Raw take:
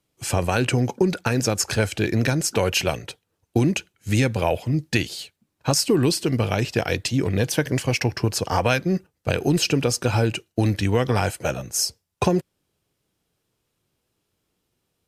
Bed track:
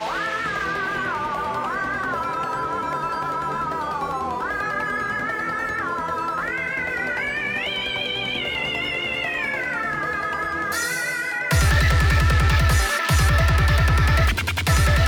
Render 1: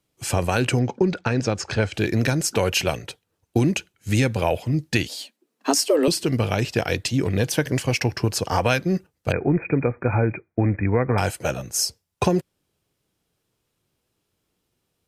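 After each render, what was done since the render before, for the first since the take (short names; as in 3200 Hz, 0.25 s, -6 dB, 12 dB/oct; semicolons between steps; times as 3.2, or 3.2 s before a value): 0.79–1.94 air absorption 120 m; 5.08–6.08 frequency shift +140 Hz; 9.32–11.18 brick-wall FIR low-pass 2500 Hz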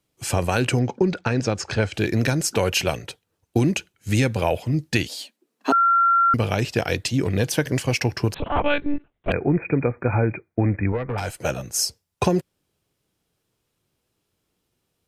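5.72–6.34 bleep 1370 Hz -14 dBFS; 8.34–9.32 monotone LPC vocoder at 8 kHz 290 Hz; 10.92–11.39 tube stage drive 13 dB, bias 0.75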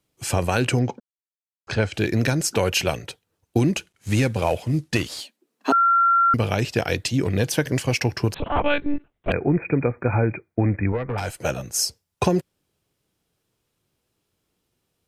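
1–1.67 mute; 3.73–5.21 CVSD 64 kbps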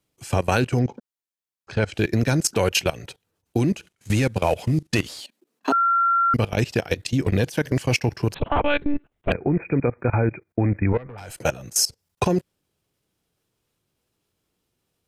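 in parallel at -1.5 dB: limiter -15.5 dBFS, peak gain reduction 9.5 dB; on the sum: level quantiser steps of 19 dB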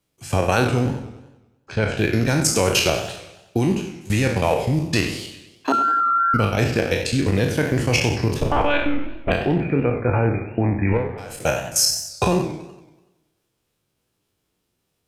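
spectral trails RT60 0.58 s; warbling echo 95 ms, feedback 55%, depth 209 cents, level -12.5 dB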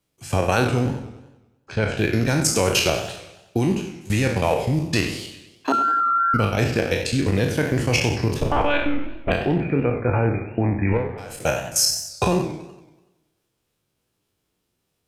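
gain -1 dB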